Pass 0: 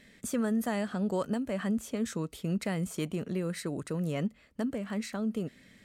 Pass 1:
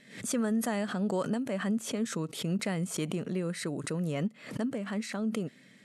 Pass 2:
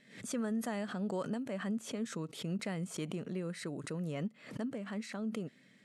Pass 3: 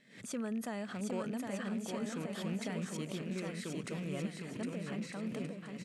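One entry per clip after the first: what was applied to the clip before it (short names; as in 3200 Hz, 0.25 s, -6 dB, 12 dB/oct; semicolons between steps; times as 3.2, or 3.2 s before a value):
FFT band-pass 110–12000 Hz; backwards sustainer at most 110 dB/s
high shelf 11000 Hz -9 dB; gain -6 dB
rattling part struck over -40 dBFS, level -41 dBFS; hard clip -27 dBFS, distortion -40 dB; bouncing-ball echo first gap 0.76 s, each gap 0.65×, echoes 5; gain -2.5 dB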